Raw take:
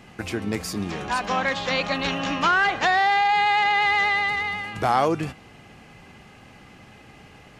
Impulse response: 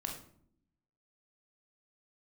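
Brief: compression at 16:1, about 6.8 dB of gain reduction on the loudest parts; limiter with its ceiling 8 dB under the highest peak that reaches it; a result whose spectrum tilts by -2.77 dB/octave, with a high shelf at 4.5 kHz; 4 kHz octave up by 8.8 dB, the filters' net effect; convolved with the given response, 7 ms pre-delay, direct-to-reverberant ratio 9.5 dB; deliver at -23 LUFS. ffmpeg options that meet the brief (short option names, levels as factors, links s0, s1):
-filter_complex "[0:a]equalizer=f=4000:t=o:g=7,highshelf=f=4500:g=9,acompressor=threshold=0.0891:ratio=16,alimiter=limit=0.119:level=0:latency=1,asplit=2[s0][s1];[1:a]atrim=start_sample=2205,adelay=7[s2];[s1][s2]afir=irnorm=-1:irlink=0,volume=0.316[s3];[s0][s3]amix=inputs=2:normalize=0,volume=1.33"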